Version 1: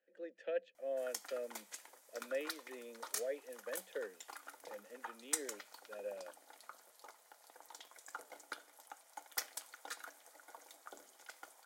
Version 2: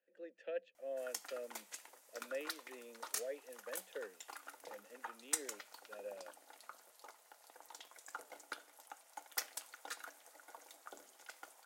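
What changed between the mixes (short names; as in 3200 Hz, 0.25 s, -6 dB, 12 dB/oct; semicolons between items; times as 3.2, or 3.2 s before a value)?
speech -3.5 dB; master: remove notch 2700 Hz, Q 14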